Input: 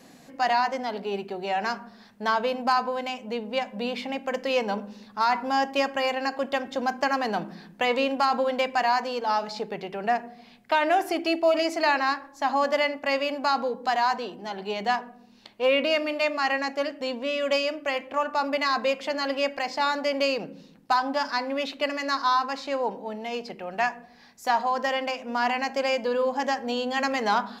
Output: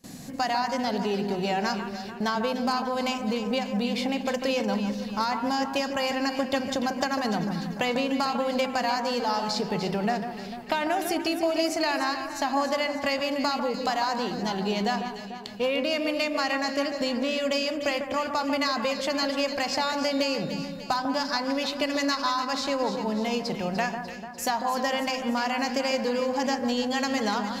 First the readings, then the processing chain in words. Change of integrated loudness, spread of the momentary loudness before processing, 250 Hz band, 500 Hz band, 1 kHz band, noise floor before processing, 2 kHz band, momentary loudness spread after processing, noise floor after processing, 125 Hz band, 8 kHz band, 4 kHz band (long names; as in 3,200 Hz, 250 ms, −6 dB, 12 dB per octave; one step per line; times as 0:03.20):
−1.0 dB, 8 LU, +5.0 dB, −1.5 dB, −3.0 dB, −52 dBFS, −2.5 dB, 4 LU, −38 dBFS, can't be measured, +7.0 dB, +1.5 dB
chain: bass and treble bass +13 dB, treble +10 dB
noise gate with hold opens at −37 dBFS
downward compressor, threshold −27 dBFS, peak gain reduction 10.5 dB
on a send: delay that swaps between a low-pass and a high-pass 148 ms, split 1,700 Hz, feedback 73%, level −7 dB
on the sum: level +3 dB